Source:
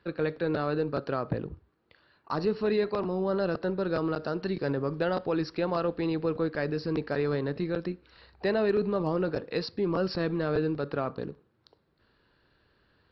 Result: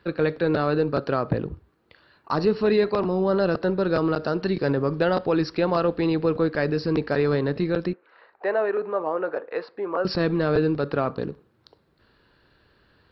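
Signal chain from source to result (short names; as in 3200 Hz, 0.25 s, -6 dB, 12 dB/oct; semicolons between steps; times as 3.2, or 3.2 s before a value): 7.93–10.05 Butterworth band-pass 950 Hz, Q 0.68; gain +6.5 dB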